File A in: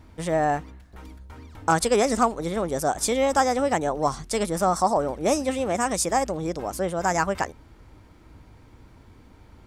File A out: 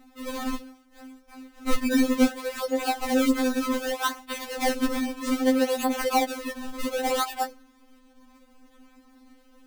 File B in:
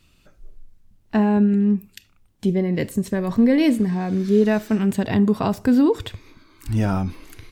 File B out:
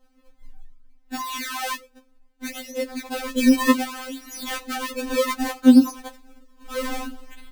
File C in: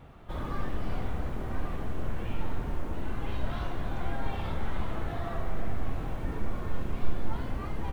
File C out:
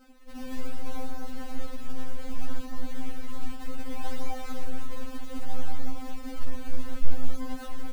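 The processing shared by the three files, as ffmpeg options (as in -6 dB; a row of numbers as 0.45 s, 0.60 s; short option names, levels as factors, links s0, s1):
-af "acrusher=samples=36:mix=1:aa=0.000001:lfo=1:lforange=57.6:lforate=0.64,afftfilt=real='re*3.46*eq(mod(b,12),0)':imag='im*3.46*eq(mod(b,12),0)':win_size=2048:overlap=0.75"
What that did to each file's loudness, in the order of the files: -2.0 LU, -2.0 LU, -4.5 LU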